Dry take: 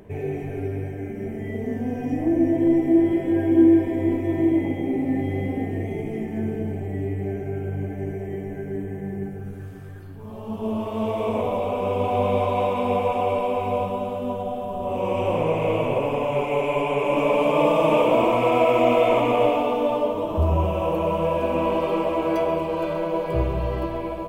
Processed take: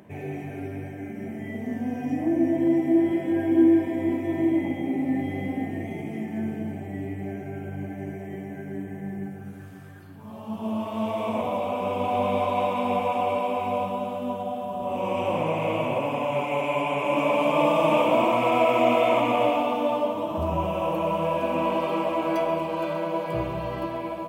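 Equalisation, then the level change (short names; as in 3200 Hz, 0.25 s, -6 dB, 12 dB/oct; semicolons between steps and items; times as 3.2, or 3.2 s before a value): HPF 150 Hz 12 dB/oct; bell 430 Hz -12 dB 0.38 oct; 0.0 dB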